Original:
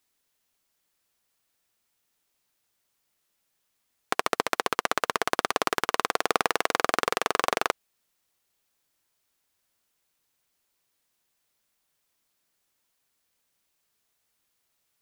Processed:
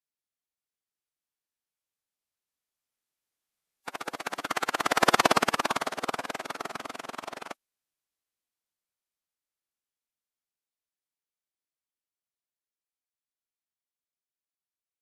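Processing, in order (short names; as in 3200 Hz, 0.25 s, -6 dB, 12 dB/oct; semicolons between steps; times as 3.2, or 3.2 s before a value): Doppler pass-by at 5.17, 20 m/s, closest 4.7 m; formant-preserving pitch shift -8.5 st; gain +8 dB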